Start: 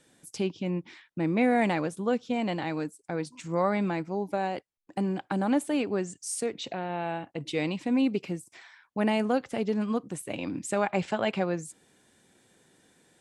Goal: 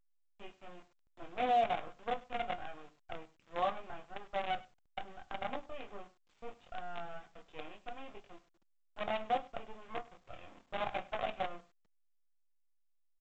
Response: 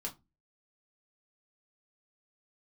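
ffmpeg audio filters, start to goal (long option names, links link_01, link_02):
-filter_complex "[0:a]aeval=exprs='sgn(val(0))*max(abs(val(0))-0.00631,0)':channel_layout=same,asplit=3[link_01][link_02][link_03];[link_01]bandpass=frequency=730:width_type=q:width=8,volume=0dB[link_04];[link_02]bandpass=frequency=1090:width_type=q:width=8,volume=-6dB[link_05];[link_03]bandpass=frequency=2440:width_type=q:width=8,volume=-9dB[link_06];[link_04][link_05][link_06]amix=inputs=3:normalize=0,flanger=delay=20:depth=6:speed=0.73,acrusher=bits=7:dc=4:mix=0:aa=0.000001,aecho=1:1:100:0.0891,asplit=2[link_07][link_08];[1:a]atrim=start_sample=2205,afade=type=out:start_time=0.32:duration=0.01,atrim=end_sample=14553,lowpass=4700[link_09];[link_08][link_09]afir=irnorm=-1:irlink=0,volume=-5.5dB[link_10];[link_07][link_10]amix=inputs=2:normalize=0,aresample=8000,aresample=44100,volume=1dB" -ar 16000 -c:a pcm_alaw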